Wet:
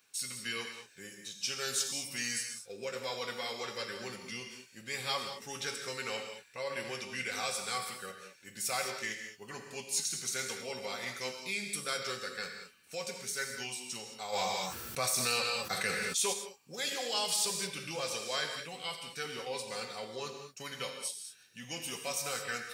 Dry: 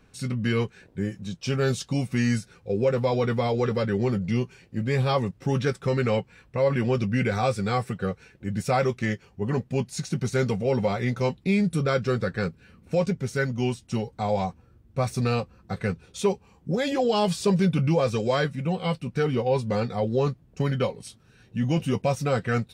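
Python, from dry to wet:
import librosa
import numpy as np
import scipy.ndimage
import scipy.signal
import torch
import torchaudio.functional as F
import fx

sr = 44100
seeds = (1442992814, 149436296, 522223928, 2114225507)

y = np.diff(x, prepend=0.0)
y = fx.rev_gated(y, sr, seeds[0], gate_ms=240, shape='flat', drr_db=3.5)
y = fx.env_flatten(y, sr, amount_pct=70, at=(14.32, 16.32), fade=0.02)
y = y * 10.0 ** (5.0 / 20.0)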